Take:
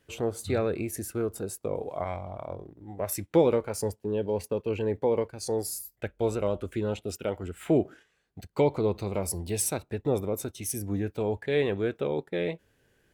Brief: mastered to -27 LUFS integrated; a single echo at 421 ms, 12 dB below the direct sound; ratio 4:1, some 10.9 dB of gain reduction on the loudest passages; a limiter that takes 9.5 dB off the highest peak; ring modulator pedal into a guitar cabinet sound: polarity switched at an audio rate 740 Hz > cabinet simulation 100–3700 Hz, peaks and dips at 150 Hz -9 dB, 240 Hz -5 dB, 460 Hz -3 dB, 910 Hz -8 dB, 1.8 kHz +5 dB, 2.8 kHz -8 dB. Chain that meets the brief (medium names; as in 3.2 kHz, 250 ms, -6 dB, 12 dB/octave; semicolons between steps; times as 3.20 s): compression 4:1, threshold -31 dBFS; peak limiter -28.5 dBFS; delay 421 ms -12 dB; polarity switched at an audio rate 740 Hz; cabinet simulation 100–3700 Hz, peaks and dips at 150 Hz -9 dB, 240 Hz -5 dB, 460 Hz -3 dB, 910 Hz -8 dB, 1.8 kHz +5 dB, 2.8 kHz -8 dB; trim +14 dB